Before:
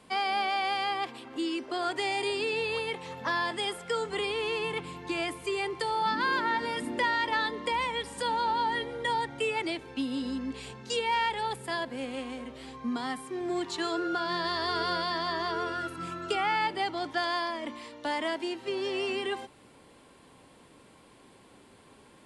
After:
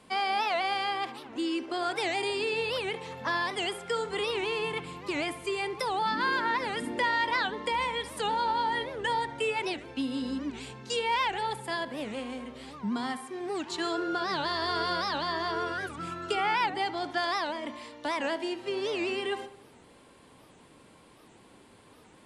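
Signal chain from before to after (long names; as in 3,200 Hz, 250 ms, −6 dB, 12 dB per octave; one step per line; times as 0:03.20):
0:13.17–0:13.70: low-shelf EQ 240 Hz −9.5 dB
feedback echo with a low-pass in the loop 70 ms, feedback 55%, low-pass 2,300 Hz, level −13 dB
wow of a warped record 78 rpm, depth 250 cents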